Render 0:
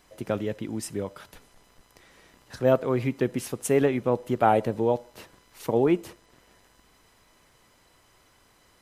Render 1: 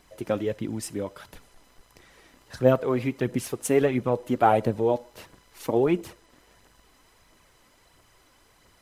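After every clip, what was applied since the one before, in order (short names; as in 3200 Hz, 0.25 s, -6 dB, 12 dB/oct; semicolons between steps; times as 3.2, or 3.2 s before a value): phaser 1.5 Hz, delay 4 ms, feedback 39%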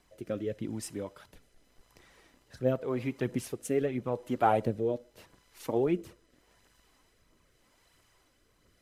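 rotary speaker horn 0.85 Hz; gain -5 dB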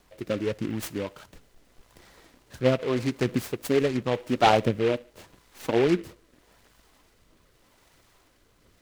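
noise-modulated delay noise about 1900 Hz, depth 0.07 ms; gain +6 dB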